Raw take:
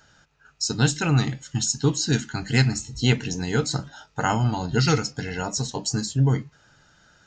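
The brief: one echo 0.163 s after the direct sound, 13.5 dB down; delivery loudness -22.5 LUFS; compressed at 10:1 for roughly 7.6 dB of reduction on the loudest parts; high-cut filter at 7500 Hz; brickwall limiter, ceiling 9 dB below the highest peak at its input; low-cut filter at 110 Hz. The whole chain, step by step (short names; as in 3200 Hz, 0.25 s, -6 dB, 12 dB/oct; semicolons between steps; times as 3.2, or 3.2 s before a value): HPF 110 Hz; LPF 7500 Hz; compressor 10:1, threshold -23 dBFS; limiter -19.5 dBFS; echo 0.163 s -13.5 dB; gain +8.5 dB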